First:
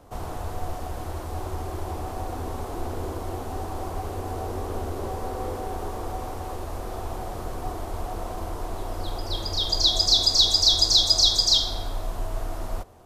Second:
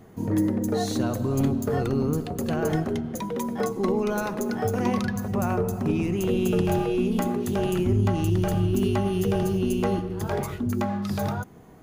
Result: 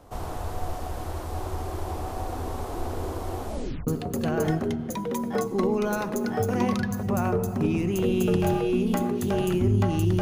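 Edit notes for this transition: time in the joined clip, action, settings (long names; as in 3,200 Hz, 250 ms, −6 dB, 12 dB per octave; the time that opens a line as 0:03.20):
first
0:03.46: tape stop 0.41 s
0:03.87: continue with second from 0:02.12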